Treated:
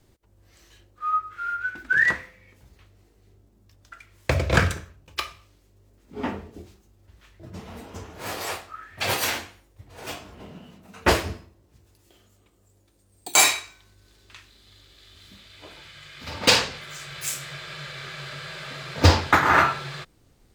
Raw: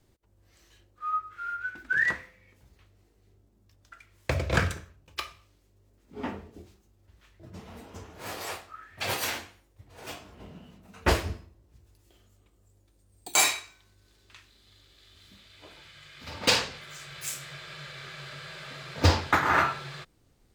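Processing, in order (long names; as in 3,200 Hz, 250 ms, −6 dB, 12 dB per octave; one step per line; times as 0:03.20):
0:10.40–0:13.37: high-pass filter 120 Hz 6 dB per octave
level +5.5 dB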